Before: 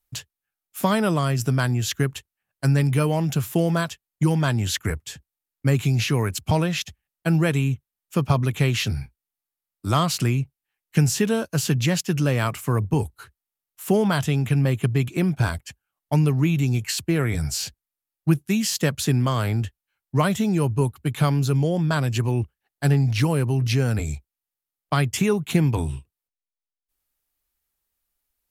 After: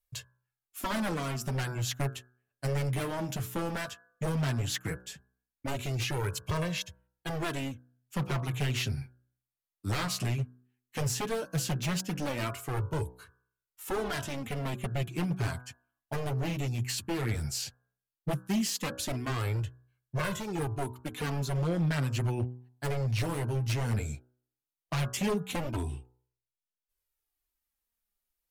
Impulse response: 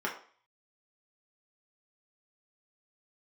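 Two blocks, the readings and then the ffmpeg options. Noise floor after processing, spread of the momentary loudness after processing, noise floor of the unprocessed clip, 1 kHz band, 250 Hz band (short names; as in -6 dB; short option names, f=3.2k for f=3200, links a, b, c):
under -85 dBFS, 10 LU, under -85 dBFS, -8.5 dB, -12.0 dB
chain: -af "bandreject=f=62.28:t=h:w=4,bandreject=f=124.56:t=h:w=4,bandreject=f=186.84:t=h:w=4,bandreject=f=249.12:t=h:w=4,bandreject=f=311.4:t=h:w=4,bandreject=f=373.68:t=h:w=4,bandreject=f=435.96:t=h:w=4,bandreject=f=498.24:t=h:w=4,bandreject=f=560.52:t=h:w=4,bandreject=f=622.8:t=h:w=4,bandreject=f=685.08:t=h:w=4,bandreject=f=747.36:t=h:w=4,bandreject=f=809.64:t=h:w=4,bandreject=f=871.92:t=h:w=4,bandreject=f=934.2:t=h:w=4,bandreject=f=996.48:t=h:w=4,bandreject=f=1.05876k:t=h:w=4,bandreject=f=1.12104k:t=h:w=4,bandreject=f=1.18332k:t=h:w=4,bandreject=f=1.2456k:t=h:w=4,bandreject=f=1.30788k:t=h:w=4,bandreject=f=1.37016k:t=h:w=4,bandreject=f=1.43244k:t=h:w=4,bandreject=f=1.49472k:t=h:w=4,bandreject=f=1.557k:t=h:w=4,bandreject=f=1.61928k:t=h:w=4,bandreject=f=1.68156k:t=h:w=4,aeval=exprs='0.126*(abs(mod(val(0)/0.126+3,4)-2)-1)':c=same,flanger=delay=1.8:depth=7.9:regen=-11:speed=0.15:shape=sinusoidal,volume=-4dB"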